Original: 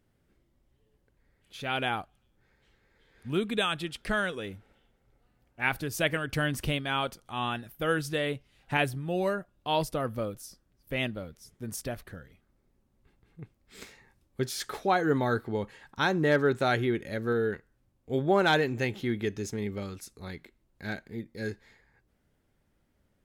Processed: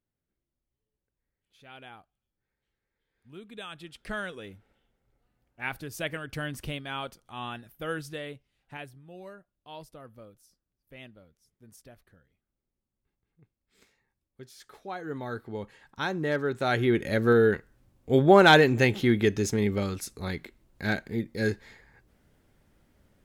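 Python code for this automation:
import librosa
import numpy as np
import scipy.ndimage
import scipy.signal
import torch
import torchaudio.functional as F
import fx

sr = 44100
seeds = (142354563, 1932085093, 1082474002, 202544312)

y = fx.gain(x, sr, db=fx.line((3.36, -17.5), (4.13, -5.5), (7.99, -5.5), (8.94, -16.5), (14.56, -16.5), (15.64, -4.0), (16.52, -4.0), (17.04, 7.5)))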